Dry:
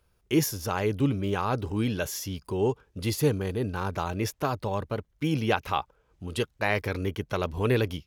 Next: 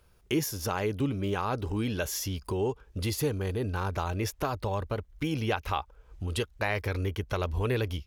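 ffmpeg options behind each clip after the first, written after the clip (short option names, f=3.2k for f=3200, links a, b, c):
-af "asubboost=boost=7:cutoff=59,acompressor=threshold=-38dB:ratio=2,volume=5.5dB"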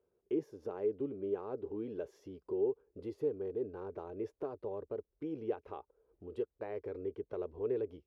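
-af "bandpass=f=410:t=q:w=3.5:csg=0,volume=-1dB"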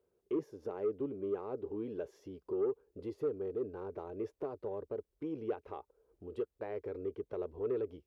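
-af "asoftclip=type=tanh:threshold=-26dB,volume=1dB"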